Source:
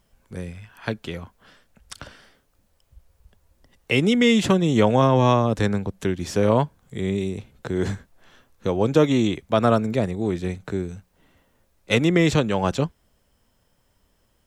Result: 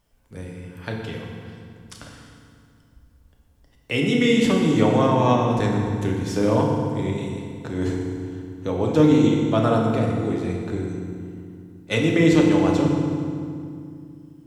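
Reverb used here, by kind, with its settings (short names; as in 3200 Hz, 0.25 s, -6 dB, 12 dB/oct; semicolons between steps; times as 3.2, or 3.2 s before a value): FDN reverb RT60 2.3 s, low-frequency decay 1.55×, high-frequency decay 0.75×, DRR -1 dB; gain -4.5 dB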